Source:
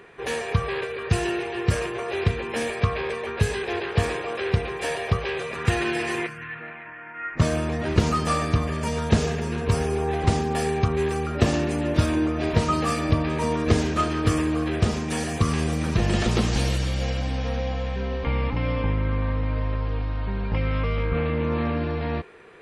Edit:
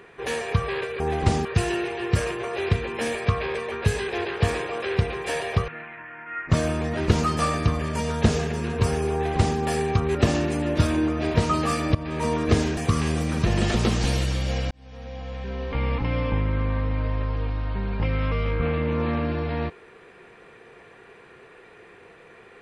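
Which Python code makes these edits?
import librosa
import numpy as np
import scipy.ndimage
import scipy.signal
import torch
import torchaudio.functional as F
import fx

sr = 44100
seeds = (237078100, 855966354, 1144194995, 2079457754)

y = fx.edit(x, sr, fx.cut(start_s=5.23, length_s=1.33),
    fx.duplicate(start_s=10.01, length_s=0.45, to_s=1.0),
    fx.cut(start_s=11.03, length_s=0.31),
    fx.fade_in_from(start_s=13.14, length_s=0.3, floor_db=-14.5),
    fx.cut(start_s=13.96, length_s=1.33),
    fx.fade_in_span(start_s=17.23, length_s=1.22), tone=tone)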